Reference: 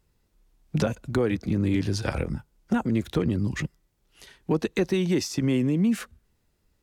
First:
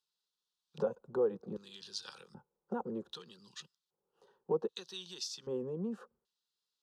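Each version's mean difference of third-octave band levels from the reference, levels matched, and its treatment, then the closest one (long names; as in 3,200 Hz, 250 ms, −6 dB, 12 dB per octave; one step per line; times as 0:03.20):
9.0 dB: auto-filter band-pass square 0.64 Hz 590–3,700 Hz
high-pass filter 49 Hz
phaser with its sweep stopped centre 430 Hz, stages 8
level +1 dB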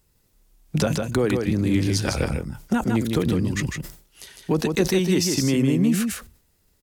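6.0 dB: high-shelf EQ 5,700 Hz +11 dB
single-tap delay 155 ms −4.5 dB
level that may fall only so fast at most 120 dB per second
level +2 dB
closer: second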